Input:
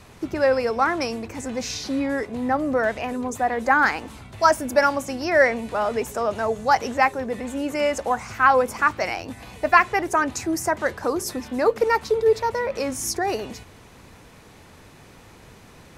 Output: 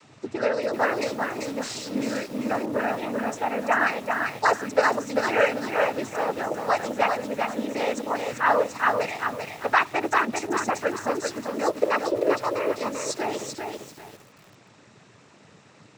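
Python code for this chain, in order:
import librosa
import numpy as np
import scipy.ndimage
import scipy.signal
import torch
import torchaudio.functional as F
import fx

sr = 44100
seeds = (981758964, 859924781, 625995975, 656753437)

y = fx.noise_vocoder(x, sr, seeds[0], bands=12)
y = fx.echo_crushed(y, sr, ms=392, feedback_pct=35, bits=7, wet_db=-4.0)
y = y * librosa.db_to_amplitude(-4.0)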